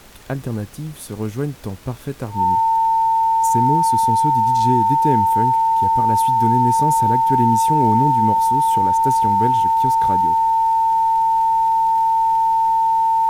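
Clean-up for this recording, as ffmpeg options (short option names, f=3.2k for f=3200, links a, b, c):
-af "adeclick=t=4,bandreject=f=900:w=30,agate=range=-21dB:threshold=-21dB"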